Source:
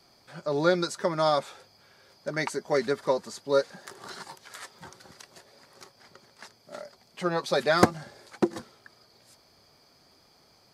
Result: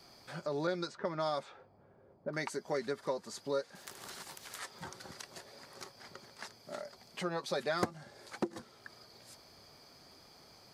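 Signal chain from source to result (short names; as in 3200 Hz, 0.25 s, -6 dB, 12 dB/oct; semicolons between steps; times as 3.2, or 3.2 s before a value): 0.67–2.33 low-pass opened by the level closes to 530 Hz, open at -20 dBFS; compressor 2:1, threshold -44 dBFS, peak gain reduction 17 dB; 3.75–4.59 spectral compressor 2:1; gain +2 dB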